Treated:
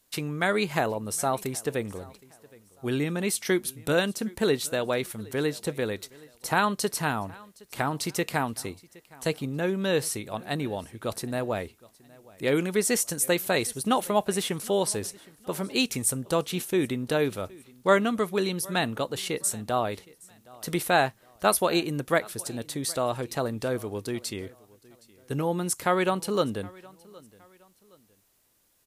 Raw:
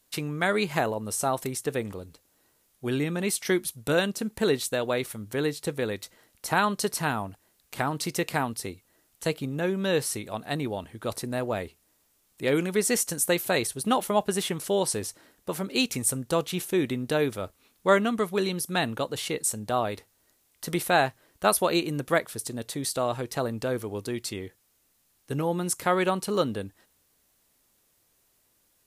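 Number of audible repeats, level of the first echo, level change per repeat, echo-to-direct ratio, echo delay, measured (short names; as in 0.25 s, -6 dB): 2, -23.5 dB, -9.0 dB, -23.0 dB, 0.767 s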